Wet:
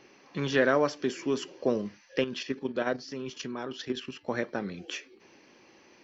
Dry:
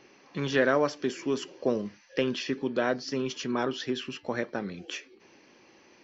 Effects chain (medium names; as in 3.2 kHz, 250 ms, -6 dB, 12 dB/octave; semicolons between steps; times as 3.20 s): 2.24–4.28 s: level held to a coarse grid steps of 9 dB